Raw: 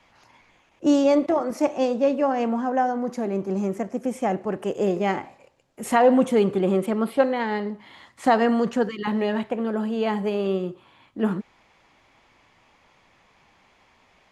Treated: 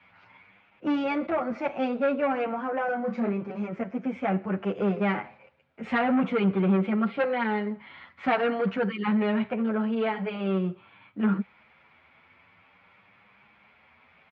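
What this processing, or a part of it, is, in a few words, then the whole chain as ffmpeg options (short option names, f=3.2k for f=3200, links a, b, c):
barber-pole flanger into a guitar amplifier: -filter_complex "[0:a]asettb=1/sr,asplit=3[a][b][c];[a]atrim=end=2.854[d];[b]atrim=start=2.85:end=3.32,asetpts=PTS-STARTPTS,afade=t=in:d=0.004:c=qsin,afade=t=out:st=0.466:d=0.004:c=qsin,asplit=2[e][f];[f]adelay=30,volume=-4.5dB[g];[e][g]amix=inputs=2:normalize=0,atrim=end_sample=20727[h];[c]atrim=start=3.316[i];[d][h]acrossfade=d=0.004:c1=hsin:c2=qsin[j];[j][i]acrossfade=d=0.004:c1=qsin:c2=hsin,asplit=2[k][l];[l]adelay=8.5,afreqshift=0.48[m];[k][m]amix=inputs=2:normalize=1,asoftclip=type=tanh:threshold=-19dB,highpass=81,equalizer=f=86:t=q:w=4:g=8,equalizer=f=190:t=q:w=4:g=6,equalizer=f=330:t=q:w=4:g=-5,equalizer=f=1.4k:t=q:w=4:g=8,equalizer=f=2.3k:t=q:w=4:g=8,lowpass=f=3.6k:w=0.5412,lowpass=f=3.6k:w=1.3066"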